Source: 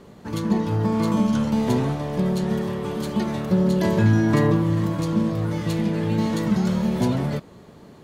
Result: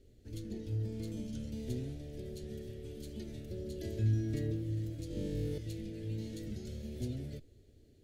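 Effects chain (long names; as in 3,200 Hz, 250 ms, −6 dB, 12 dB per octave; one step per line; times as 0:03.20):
guitar amp tone stack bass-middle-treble 10-0-1
phaser with its sweep stopped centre 430 Hz, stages 4
0:05.08–0:05.58: flutter between parallel walls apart 3.5 metres, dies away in 1.4 s
level +5.5 dB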